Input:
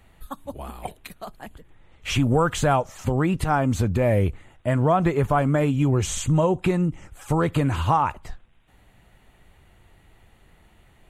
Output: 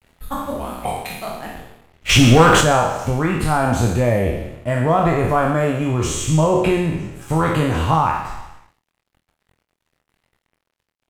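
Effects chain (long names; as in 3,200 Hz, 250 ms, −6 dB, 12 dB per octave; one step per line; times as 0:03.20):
peak hold with a decay on every bin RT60 1.08 s
speech leveller within 4 dB 2 s
0:02.09–0:02.61: leveller curve on the samples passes 2
dead-zone distortion −46 dBFS
ambience of single reflections 25 ms −7.5 dB, 52 ms −16 dB
level +1 dB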